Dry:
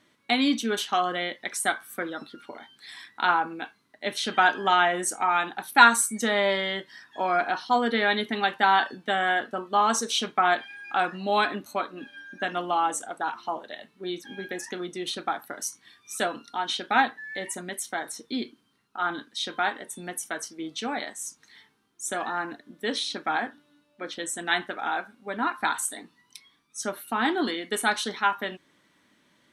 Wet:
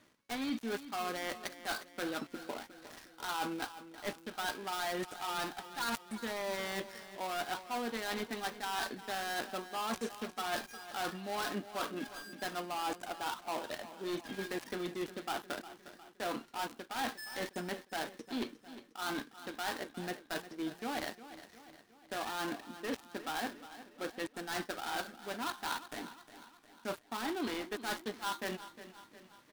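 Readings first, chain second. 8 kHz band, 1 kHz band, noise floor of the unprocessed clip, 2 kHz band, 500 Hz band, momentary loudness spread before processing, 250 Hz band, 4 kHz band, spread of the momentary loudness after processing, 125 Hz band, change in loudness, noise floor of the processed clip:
-14.0 dB, -14.0 dB, -66 dBFS, -14.0 dB, -10.0 dB, 14 LU, -8.5 dB, -11.0 dB, 9 LU, -6.5 dB, -12.5 dB, -62 dBFS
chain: switching dead time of 0.18 ms; reverse; compressor 8:1, threshold -35 dBFS, peak gain reduction 22.5 dB; reverse; feedback echo 0.357 s, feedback 52%, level -14 dB; gain +1 dB

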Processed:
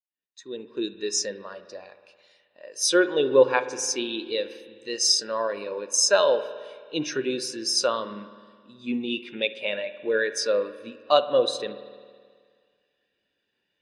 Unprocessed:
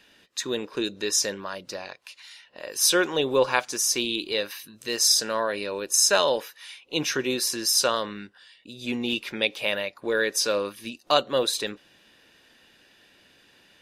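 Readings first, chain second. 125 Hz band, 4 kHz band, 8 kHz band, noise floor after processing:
-4.5 dB, -2.5 dB, -3.0 dB, -78 dBFS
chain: opening faded in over 0.87 s; LPF 10000 Hz 24 dB/oct; spring tank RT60 2.7 s, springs 53 ms, chirp 25 ms, DRR 7 dB; spectral expander 1.5:1; gain -1.5 dB

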